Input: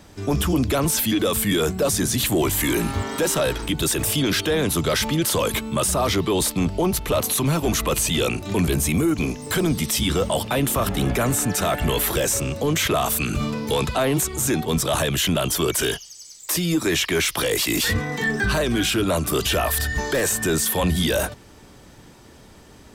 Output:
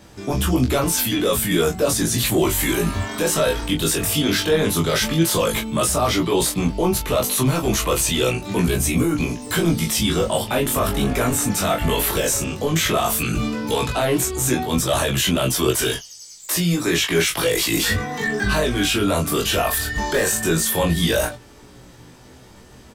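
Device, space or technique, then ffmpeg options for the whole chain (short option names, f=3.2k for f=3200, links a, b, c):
double-tracked vocal: -filter_complex "[0:a]asplit=2[a][b];[b]adelay=24,volume=-5dB[c];[a][c]amix=inputs=2:normalize=0,flanger=delay=15.5:depth=4.2:speed=0.13,volume=3.5dB"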